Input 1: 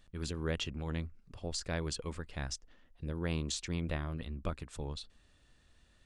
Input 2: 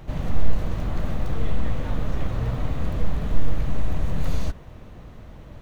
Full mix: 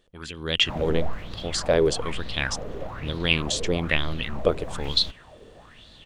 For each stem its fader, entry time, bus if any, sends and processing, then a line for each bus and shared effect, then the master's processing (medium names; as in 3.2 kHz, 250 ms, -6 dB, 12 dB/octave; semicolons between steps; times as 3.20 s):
-1.5 dB, 0.00 s, no send, peaking EQ 3.2 kHz +7 dB 0.24 oct
-8.0 dB, 0.60 s, no send, self-modulated delay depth 0.94 ms; auto duck -11 dB, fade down 1.30 s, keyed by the first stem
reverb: none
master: bass shelf 130 Hz -6 dB; level rider gain up to 10.5 dB; sweeping bell 1.1 Hz 410–4200 Hz +17 dB